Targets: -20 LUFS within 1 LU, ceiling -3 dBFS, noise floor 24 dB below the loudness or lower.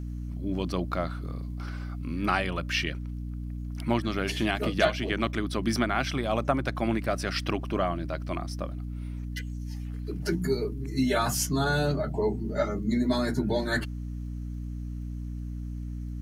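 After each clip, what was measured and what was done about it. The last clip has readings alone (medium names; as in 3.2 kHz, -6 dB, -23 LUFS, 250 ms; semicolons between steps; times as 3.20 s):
tick rate 24 per s; hum 60 Hz; highest harmonic 300 Hz; hum level -32 dBFS; loudness -30.0 LUFS; peak level -7.5 dBFS; loudness target -20.0 LUFS
-> de-click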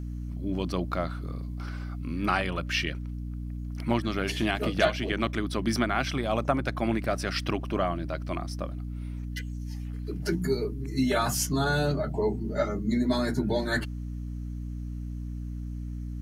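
tick rate 0.12 per s; hum 60 Hz; highest harmonic 300 Hz; hum level -32 dBFS
-> de-hum 60 Hz, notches 5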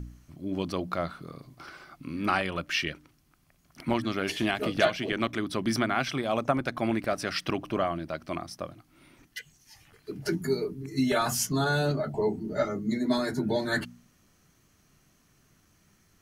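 hum not found; loudness -29.5 LUFS; peak level -8.0 dBFS; loudness target -20.0 LUFS
-> trim +9.5 dB; peak limiter -3 dBFS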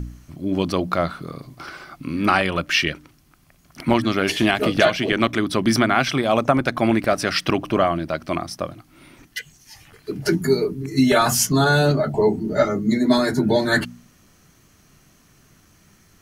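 loudness -20.0 LUFS; peak level -3.0 dBFS; noise floor -56 dBFS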